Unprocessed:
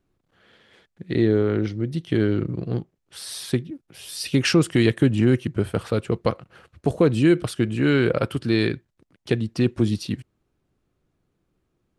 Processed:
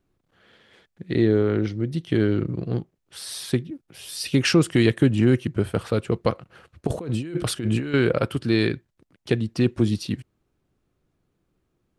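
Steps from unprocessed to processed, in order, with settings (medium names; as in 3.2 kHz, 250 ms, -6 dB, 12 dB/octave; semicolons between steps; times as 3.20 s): 6.87–7.94 s: compressor with a negative ratio -27 dBFS, ratio -1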